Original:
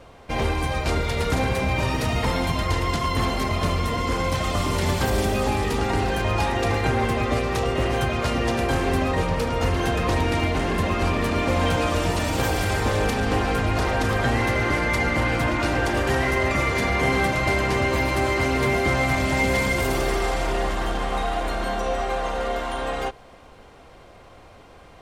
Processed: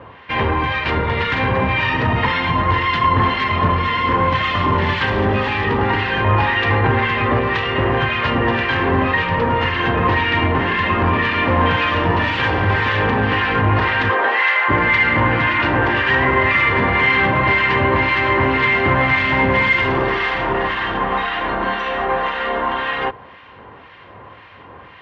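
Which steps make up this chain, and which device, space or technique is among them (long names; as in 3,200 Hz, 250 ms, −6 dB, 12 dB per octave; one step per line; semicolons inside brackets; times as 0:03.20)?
0:14.08–0:14.68: high-pass filter 310 Hz → 690 Hz 24 dB per octave
guitar amplifier with harmonic tremolo (two-band tremolo in antiphase 1.9 Hz, depth 70%, crossover 1,400 Hz; soft clipping −18 dBFS, distortion −18 dB; loudspeaker in its box 92–3,500 Hz, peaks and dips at 100 Hz +6 dB, 680 Hz −5 dB, 1,000 Hz +9 dB, 1,800 Hz +10 dB, 2,900 Hz +5 dB)
level +8.5 dB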